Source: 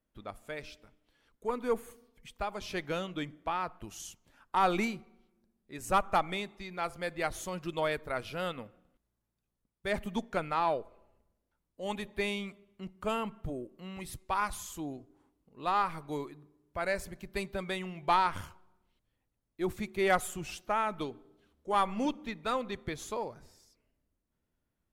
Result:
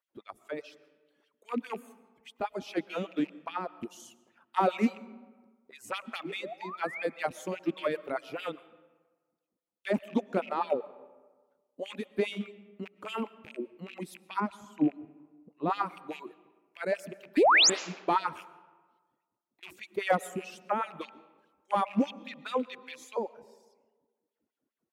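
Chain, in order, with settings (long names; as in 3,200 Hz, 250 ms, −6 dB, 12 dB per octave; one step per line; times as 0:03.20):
loose part that buzzes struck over −43 dBFS, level −32 dBFS
0:14.40–0:15.70: RIAA equalisation playback
reverb reduction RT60 0.7 s
tilt shelving filter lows +6 dB, about 650 Hz
0:06.07–0:07.03: sound drawn into the spectrogram rise 210–2,600 Hz −43 dBFS
0:18.43–0:19.63: downward compressor 10 to 1, threshold −59 dBFS, peak gain reduction 28 dB
auto-filter high-pass sine 4.9 Hz 220–3,100 Hz
0:17.37–0:17.70: sound drawn into the spectrogram rise 260–7,800 Hz −20 dBFS
comb and all-pass reverb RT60 1.4 s, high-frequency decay 0.55×, pre-delay 80 ms, DRR 18.5 dB
highs frequency-modulated by the lows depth 0.11 ms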